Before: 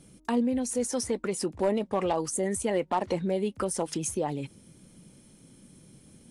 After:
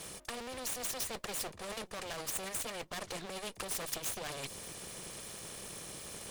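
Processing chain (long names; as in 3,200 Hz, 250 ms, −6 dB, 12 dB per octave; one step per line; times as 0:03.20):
lower of the sound and its delayed copy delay 1.7 ms
low-shelf EQ 160 Hz −10 dB
reversed playback
downward compressor, threshold −39 dBFS, peak gain reduction 13.5 dB
reversed playback
dynamic equaliser 1,400 Hz, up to −6 dB, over −58 dBFS, Q 0.94
every bin compressed towards the loudest bin 2 to 1
level +7.5 dB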